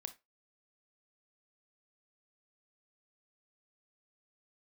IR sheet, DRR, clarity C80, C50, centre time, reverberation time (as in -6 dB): 9.5 dB, 24.5 dB, 15.5 dB, 5 ms, 0.20 s